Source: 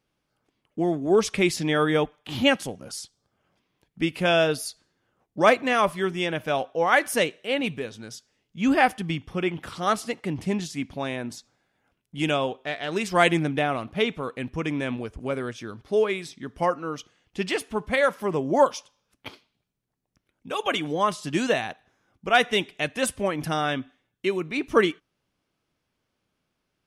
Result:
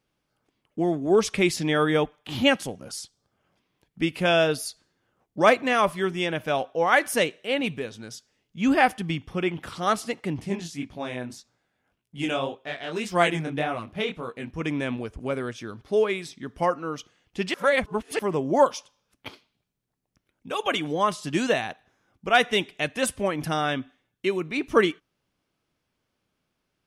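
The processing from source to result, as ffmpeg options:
ffmpeg -i in.wav -filter_complex "[0:a]asettb=1/sr,asplit=3[link_01][link_02][link_03];[link_01]atrim=end=10.404[link_04];[link_02]atrim=start=10.4:end=14.61,asetpts=PTS-STARTPTS,afade=type=in:duration=0.004:curve=qsin,afade=type=out:start_time=4.206:duration=0.004:curve=qsin,flanger=delay=17:depth=7.2:speed=1.8[link_05];[link_03]atrim=start=14.606[link_06];[link_04][link_05]acrossfade=duration=0.004:curve1=hsin:curve2=qsin[link_07];[link_07][link_06]acrossfade=duration=0.004:curve1=qsin:curve2=hsin,asplit=3[link_08][link_09][link_10];[link_08]atrim=end=17.542[link_11];[link_09]atrim=start=17.538:end=18.192,asetpts=PTS-STARTPTS,areverse[link_12];[link_10]atrim=start=18.188[link_13];[link_11][link_12]acrossfade=duration=0.004:curve1=hsin:curve2=hsin[link_14];[link_14][link_13]acrossfade=duration=0.004:curve1=hsin:curve2=hsin" out.wav

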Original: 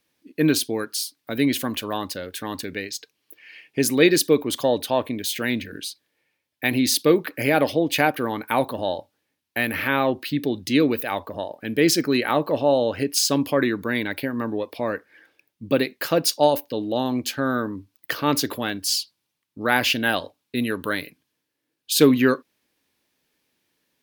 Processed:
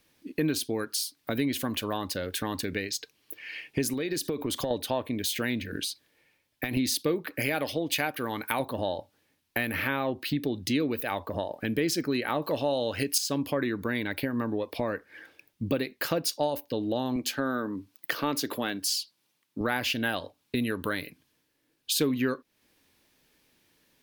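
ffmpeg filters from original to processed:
ffmpeg -i in.wav -filter_complex "[0:a]asettb=1/sr,asplit=3[link_01][link_02][link_03];[link_01]atrim=end=3.934[link_04];[link_02]atrim=start=3.93:end=4.71,asetpts=PTS-STARTPTS,afade=type=in:duration=0.004:curve=qsin,afade=type=out:start_time=0.776:duration=0.004:curve=qsin,acompressor=threshold=-24dB:ratio=6:attack=3.2:release=140:knee=1:detection=peak[link_05];[link_03]atrim=start=4.706[link_06];[link_04][link_05]acrossfade=duration=0.004:curve1=hsin:curve2=qsin[link_07];[link_07][link_06]acrossfade=duration=0.004:curve1=qsin:curve2=hsin,asettb=1/sr,asplit=3[link_08][link_09][link_10];[link_08]atrim=end=5.704[link_11];[link_09]atrim=start=5.7:end=6.77,asetpts=PTS-STARTPTS,afade=type=in:duration=0.004:curve=qsin,afade=type=out:start_time=1.066:duration=0.004:curve=qsin,acompressor=threshold=-27dB:ratio=6:attack=3.2:release=140:knee=1:detection=peak[link_12];[link_10]atrim=start=6.766[link_13];[link_11][link_12]acrossfade=duration=0.004:curve1=hsin:curve2=qsin[link_14];[link_14][link_13]acrossfade=duration=0.004:curve1=qsin:curve2=hsin,asettb=1/sr,asplit=3[link_15][link_16][link_17];[link_15]atrim=end=7.404[link_18];[link_16]atrim=start=7.4:end=8.6,asetpts=PTS-STARTPTS,afade=type=in:duration=0.004:curve=qsin,afade=type=out:start_time=1.196:duration=0.004:curve=qsin,tiltshelf=frequency=1400:gain=-4[link_19];[link_17]atrim=start=8.596[link_20];[link_18][link_19]acrossfade=duration=0.004:curve1=hsin:curve2=qsin[link_21];[link_21][link_20]acrossfade=duration=0.004:curve1=qsin:curve2=hsin,asettb=1/sr,asplit=3[link_22][link_23][link_24];[link_22]atrim=end=12.424[link_25];[link_23]atrim=start=12.42:end=13.18,asetpts=PTS-STARTPTS,afade=type=in:duration=0.004:curve=qsin,afade=type=out:start_time=0.756:duration=0.004:curve=qsin,highshelf=frequency=2100:gain=11[link_26];[link_24]atrim=start=13.176[link_27];[link_25][link_26]acrossfade=duration=0.004:curve1=hsin:curve2=qsin[link_28];[link_28][link_27]acrossfade=duration=0.004:curve1=qsin:curve2=hsin,asettb=1/sr,asplit=3[link_29][link_30][link_31];[link_29]atrim=end=17.164[link_32];[link_30]atrim=start=17.16:end=19.61,asetpts=PTS-STARTPTS,afade=type=in:duration=0.004:curve=qsin,afade=type=out:start_time=2.446:duration=0.004:curve=qsin,highpass=180[link_33];[link_31]atrim=start=19.606[link_34];[link_32][link_33]acrossfade=duration=0.004:curve1=hsin:curve2=qsin[link_35];[link_35][link_34]acrossfade=duration=0.004:curve1=qsin:curve2=hsin,acompressor=threshold=-35dB:ratio=3,lowshelf=frequency=70:gain=11.5,volume=5dB" out.wav

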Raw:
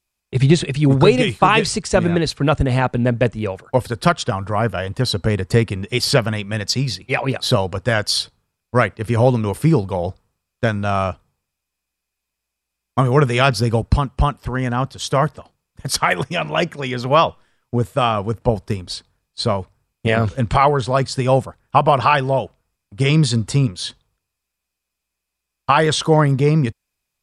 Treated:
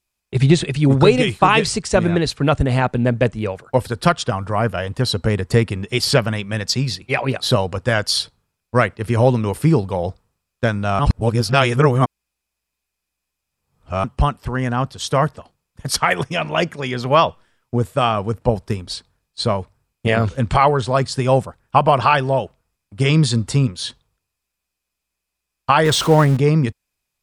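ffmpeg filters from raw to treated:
ffmpeg -i in.wav -filter_complex "[0:a]asettb=1/sr,asplit=3[link_01][link_02][link_03];[link_01]atrim=end=25.854[link_04];[link_02]atrim=start=25.85:end=26.37,asetpts=PTS-STARTPTS,afade=type=in:duration=0.004:curve=qsin,afade=type=out:start_time=0.516:duration=0.004:curve=qsin,aeval=exprs='val(0)+0.5*0.0708*sgn(val(0))':channel_layout=same[link_05];[link_03]atrim=start=26.366[link_06];[link_04][link_05]acrossfade=duration=0.004:curve1=hsin:curve2=qsin[link_07];[link_07][link_06]acrossfade=duration=0.004:curve1=qsin:curve2=hsin,asplit=3[link_08][link_09][link_10];[link_08]atrim=end=10.992[link_11];[link_09]atrim=start=10.988:end=14.042,asetpts=PTS-STARTPTS,areverse[link_12];[link_10]atrim=start=14.038[link_13];[link_11][link_12]acrossfade=duration=0.004:curve1=hsin:curve2=hsin[link_14];[link_14][link_13]acrossfade=duration=0.004:curve1=hsin:curve2=hsin" out.wav

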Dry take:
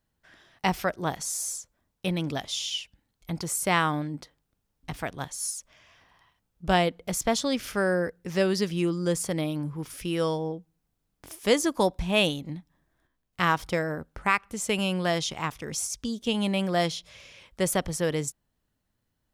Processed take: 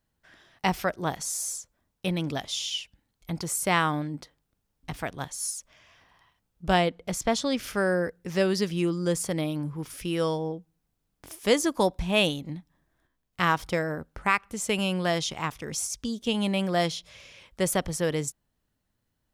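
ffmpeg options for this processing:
ffmpeg -i in.wav -filter_complex "[0:a]asettb=1/sr,asplit=3[link_01][link_02][link_03];[link_01]atrim=end=6.804[link_04];[link_02]atrim=start=6.8:end=7.58,asetpts=PTS-STARTPTS,afade=type=in:duration=0.004:curve=qsin,afade=type=out:start_time=0.776:duration=0.004:curve=qsin,highshelf=frequency=11000:gain=-10[link_05];[link_03]atrim=start=7.576[link_06];[link_04][link_05]acrossfade=duration=0.004:curve1=hsin:curve2=qsin[link_07];[link_07][link_06]acrossfade=duration=0.004:curve1=qsin:curve2=hsin" out.wav

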